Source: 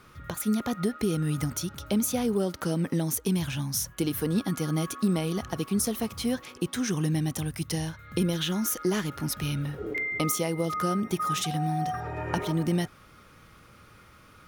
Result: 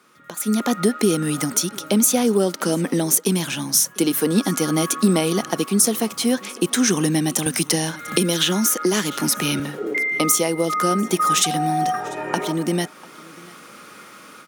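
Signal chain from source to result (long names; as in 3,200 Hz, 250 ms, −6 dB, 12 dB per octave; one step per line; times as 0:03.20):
high-pass filter 200 Hz 24 dB per octave
parametric band 7,900 Hz +6 dB 0.89 octaves
automatic gain control gain up to 14.5 dB
single-tap delay 695 ms −23.5 dB
0:07.46–0:09.60: multiband upward and downward compressor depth 70%
level −2 dB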